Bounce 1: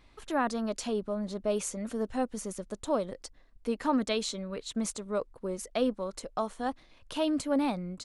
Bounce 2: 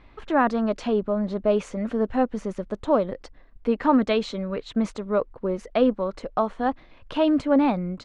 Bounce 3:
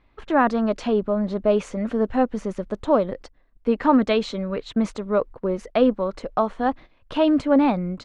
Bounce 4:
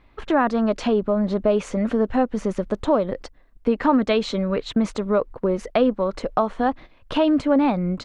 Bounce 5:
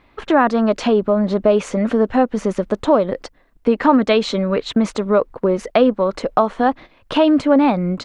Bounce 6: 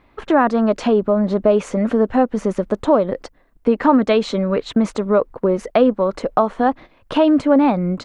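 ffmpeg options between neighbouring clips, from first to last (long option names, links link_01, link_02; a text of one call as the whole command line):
ffmpeg -i in.wav -af "lowpass=2500,volume=8.5dB" out.wav
ffmpeg -i in.wav -af "agate=range=-11dB:threshold=-40dB:ratio=16:detection=peak,volume=2dB" out.wav
ffmpeg -i in.wav -af "acompressor=threshold=-25dB:ratio=2,volume=5.5dB" out.wav
ffmpeg -i in.wav -af "lowshelf=frequency=92:gain=-10.5,volume=5.5dB" out.wav
ffmpeg -i in.wav -af "equalizer=frequency=3800:width_type=o:width=2.2:gain=-4.5" out.wav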